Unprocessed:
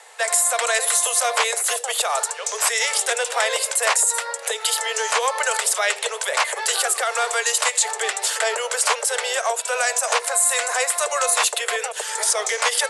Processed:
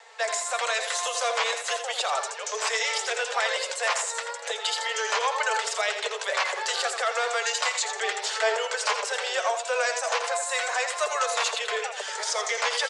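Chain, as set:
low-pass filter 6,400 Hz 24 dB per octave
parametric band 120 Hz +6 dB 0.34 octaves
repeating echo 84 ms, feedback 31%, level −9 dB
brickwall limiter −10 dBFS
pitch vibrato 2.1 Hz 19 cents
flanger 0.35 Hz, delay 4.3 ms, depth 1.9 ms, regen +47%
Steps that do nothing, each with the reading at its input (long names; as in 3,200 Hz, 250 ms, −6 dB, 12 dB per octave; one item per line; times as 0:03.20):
parametric band 120 Hz: nothing at its input below 360 Hz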